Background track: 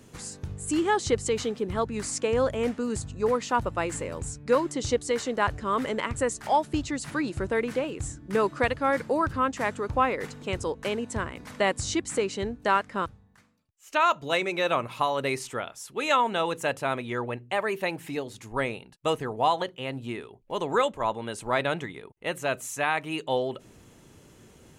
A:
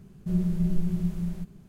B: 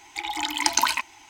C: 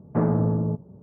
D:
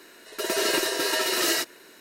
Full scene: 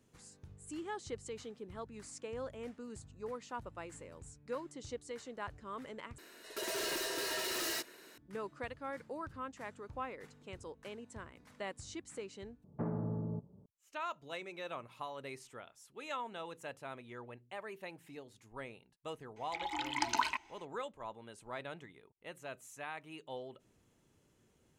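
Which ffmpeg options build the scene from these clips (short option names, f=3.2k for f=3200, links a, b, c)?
-filter_complex "[0:a]volume=-18dB[a];[4:a]asoftclip=type=tanh:threshold=-28dB[b];[3:a]alimiter=limit=-15dB:level=0:latency=1:release=421[c];[2:a]aemphasis=mode=reproduction:type=75kf[d];[a]asplit=3[e][f][g];[e]atrim=end=6.184[h];[b]atrim=end=2,asetpts=PTS-STARTPTS,volume=-6.5dB[i];[f]atrim=start=8.176:end=12.644[j];[c]atrim=end=1.02,asetpts=PTS-STARTPTS,volume=-13dB[k];[g]atrim=start=13.656[l];[d]atrim=end=1.29,asetpts=PTS-STARTPTS,volume=-8dB,afade=t=in:d=0.004:c=hsin,afade=t=out:st=1.286:d=0.004:c=hsin,adelay=19360[m];[h][i]acrossfade=d=0.004:c1=hsin:c2=hsin[n];[n][j]acrossfade=d=0.004:c1=hsin:c2=hsin[o];[o][k]acrossfade=d=0.004:c1=hsin:c2=hsin[p];[p][l]acrossfade=d=0.004:c1=hsin:c2=hsin[q];[q][m]amix=inputs=2:normalize=0"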